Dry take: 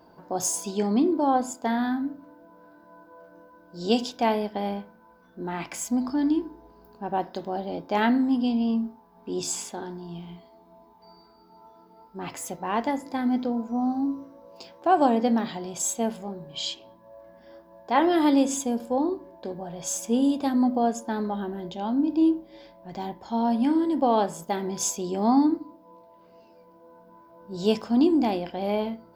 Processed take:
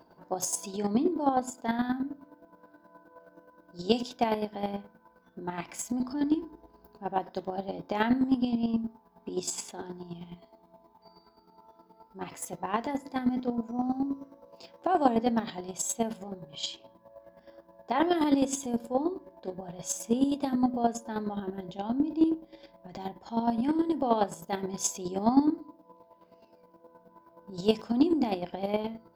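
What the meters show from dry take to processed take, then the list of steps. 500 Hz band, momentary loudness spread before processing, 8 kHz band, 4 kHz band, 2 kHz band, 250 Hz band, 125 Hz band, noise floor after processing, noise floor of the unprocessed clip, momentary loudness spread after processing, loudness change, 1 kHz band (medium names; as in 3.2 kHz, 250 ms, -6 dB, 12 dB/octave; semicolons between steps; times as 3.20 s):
-4.0 dB, 15 LU, -4.0 dB, -4.5 dB, -4.5 dB, -4.5 dB, -3.0 dB, -62 dBFS, -55 dBFS, 15 LU, -4.5 dB, -4.5 dB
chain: square tremolo 9.5 Hz, depth 60%, duty 25%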